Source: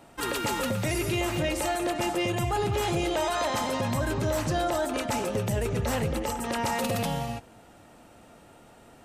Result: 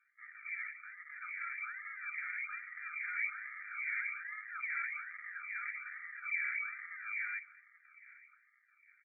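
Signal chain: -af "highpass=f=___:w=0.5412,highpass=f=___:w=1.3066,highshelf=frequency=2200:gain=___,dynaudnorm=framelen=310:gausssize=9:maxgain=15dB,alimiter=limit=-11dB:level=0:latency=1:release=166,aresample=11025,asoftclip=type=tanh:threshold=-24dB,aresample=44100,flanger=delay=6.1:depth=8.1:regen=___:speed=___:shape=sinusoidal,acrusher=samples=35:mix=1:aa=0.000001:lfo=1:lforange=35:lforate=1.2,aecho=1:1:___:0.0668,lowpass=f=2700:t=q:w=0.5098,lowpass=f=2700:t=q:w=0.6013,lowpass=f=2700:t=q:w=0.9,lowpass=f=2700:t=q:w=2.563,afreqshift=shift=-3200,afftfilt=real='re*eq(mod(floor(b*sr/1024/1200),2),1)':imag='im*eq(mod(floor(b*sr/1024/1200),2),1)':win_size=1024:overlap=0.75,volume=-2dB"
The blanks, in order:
690, 690, -2, -57, 1.7, 213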